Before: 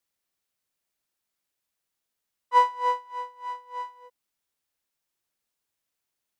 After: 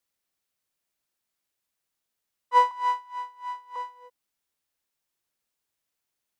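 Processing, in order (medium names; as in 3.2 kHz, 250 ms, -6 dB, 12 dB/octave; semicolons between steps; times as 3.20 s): 2.71–3.76 s: steep high-pass 680 Hz 36 dB/octave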